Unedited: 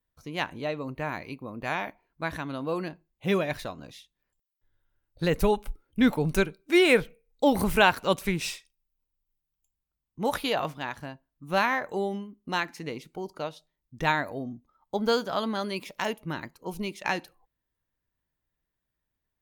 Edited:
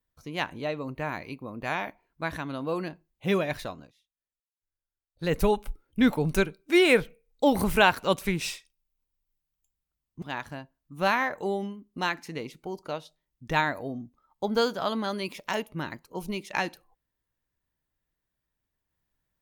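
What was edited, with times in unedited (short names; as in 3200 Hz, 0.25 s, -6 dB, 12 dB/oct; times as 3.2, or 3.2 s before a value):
3.74–5.33 dip -20.5 dB, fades 0.18 s
10.22–10.73 cut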